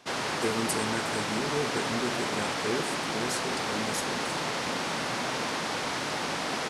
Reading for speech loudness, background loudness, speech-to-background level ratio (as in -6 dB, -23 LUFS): -34.5 LUFS, -30.5 LUFS, -4.0 dB